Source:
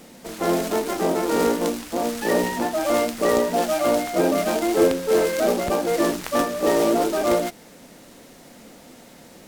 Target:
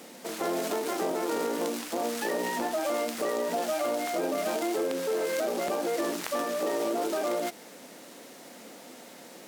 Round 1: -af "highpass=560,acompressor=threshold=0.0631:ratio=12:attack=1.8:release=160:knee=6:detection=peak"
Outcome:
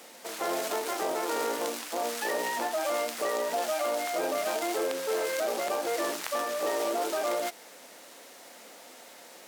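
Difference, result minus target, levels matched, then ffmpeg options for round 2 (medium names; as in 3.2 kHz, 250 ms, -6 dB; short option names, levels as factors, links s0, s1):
250 Hz band -6.0 dB
-af "highpass=270,acompressor=threshold=0.0631:ratio=12:attack=1.8:release=160:knee=6:detection=peak"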